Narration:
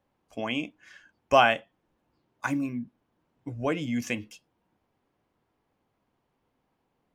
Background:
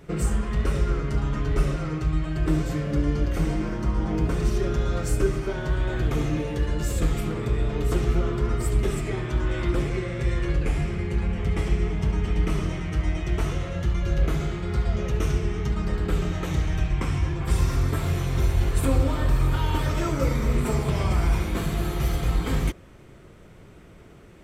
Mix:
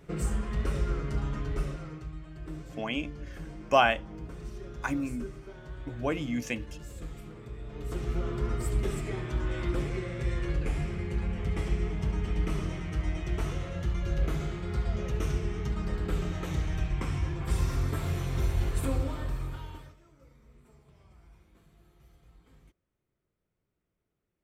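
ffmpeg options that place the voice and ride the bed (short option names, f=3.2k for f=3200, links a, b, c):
-filter_complex "[0:a]adelay=2400,volume=-2.5dB[a];[1:a]volume=5.5dB,afade=t=out:st=1.22:d=0.93:silence=0.266073,afade=t=in:st=7.63:d=0.79:silence=0.266073,afade=t=out:st=18.65:d=1.32:silence=0.0354813[b];[a][b]amix=inputs=2:normalize=0"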